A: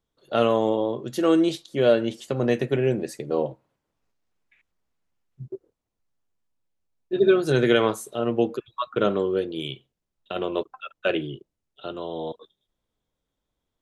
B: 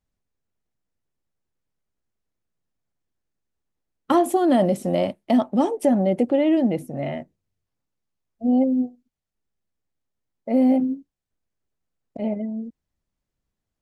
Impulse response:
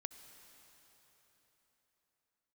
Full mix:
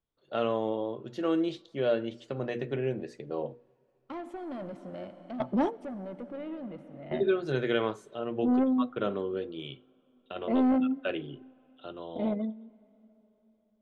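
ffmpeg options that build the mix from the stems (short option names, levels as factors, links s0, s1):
-filter_complex "[0:a]bandreject=f=60:t=h:w=6,bandreject=f=120:t=h:w=6,bandreject=f=180:t=h:w=6,bandreject=f=240:t=h:w=6,bandreject=f=300:t=h:w=6,bandreject=f=360:t=h:w=6,bandreject=f=420:t=h:w=6,bandreject=f=480:t=h:w=6,volume=0.355,asplit=3[s0][s1][s2];[s1]volume=0.141[s3];[1:a]asoftclip=type=tanh:threshold=0.141,volume=0.562,asplit=2[s4][s5];[s5]volume=0.355[s6];[s2]apad=whole_len=609317[s7];[s4][s7]sidechaingate=range=0.0224:threshold=0.00126:ratio=16:detection=peak[s8];[2:a]atrim=start_sample=2205[s9];[s3][s6]amix=inputs=2:normalize=0[s10];[s10][s9]afir=irnorm=-1:irlink=0[s11];[s0][s8][s11]amix=inputs=3:normalize=0,lowpass=4000"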